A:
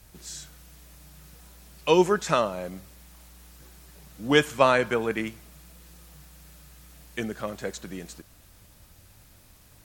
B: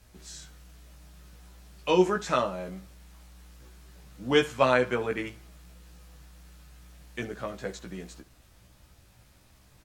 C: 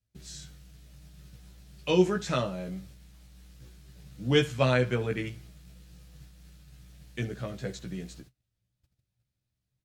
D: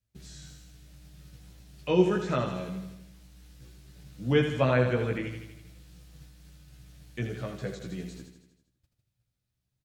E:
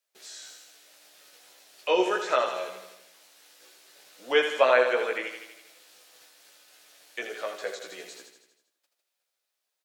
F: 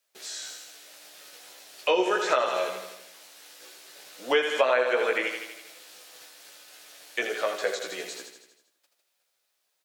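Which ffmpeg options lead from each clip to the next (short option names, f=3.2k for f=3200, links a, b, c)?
-af "highshelf=f=9.5k:g=-11,aecho=1:1:16|68:0.668|0.133,volume=-4dB"
-af "agate=range=-28dB:threshold=-51dB:ratio=16:detection=peak,equalizer=f=125:t=o:w=1:g=12,equalizer=f=1k:t=o:w=1:g=-7,equalizer=f=4k:t=o:w=1:g=3,volume=-1.5dB"
-filter_complex "[0:a]aecho=1:1:80|160|240|320|400|480|560:0.376|0.218|0.126|0.0733|0.0425|0.0247|0.0143,acrossover=split=2600[a][b];[b]acompressor=threshold=-48dB:ratio=4:attack=1:release=60[c];[a][c]amix=inputs=2:normalize=0"
-af "highpass=f=490:w=0.5412,highpass=f=490:w=1.3066,volume=7dB"
-af "acompressor=threshold=-27dB:ratio=4,volume=6.5dB"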